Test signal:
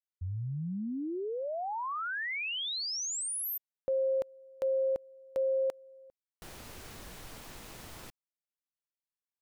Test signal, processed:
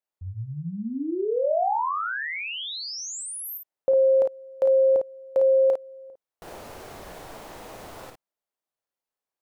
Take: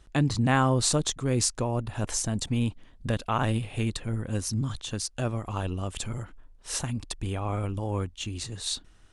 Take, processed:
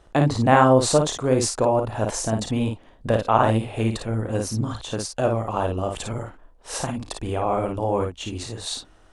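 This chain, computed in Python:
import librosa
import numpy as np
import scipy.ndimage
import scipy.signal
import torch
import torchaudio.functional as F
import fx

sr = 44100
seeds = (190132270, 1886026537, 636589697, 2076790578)

p1 = fx.peak_eq(x, sr, hz=640.0, db=12.5, octaves=2.2)
p2 = p1 + fx.room_early_taps(p1, sr, ms=(35, 54), db=(-11.5, -5.0), dry=0)
y = F.gain(torch.from_numpy(p2), -1.0).numpy()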